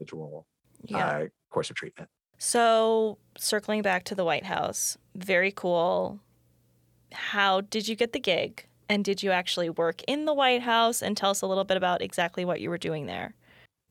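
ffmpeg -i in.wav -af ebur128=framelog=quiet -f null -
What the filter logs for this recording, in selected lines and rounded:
Integrated loudness:
  I:         -27.0 LUFS
  Threshold: -37.8 LUFS
Loudness range:
  LRA:         3.0 LU
  Threshold: -47.2 LUFS
  LRA low:   -28.8 LUFS
  LRA high:  -25.8 LUFS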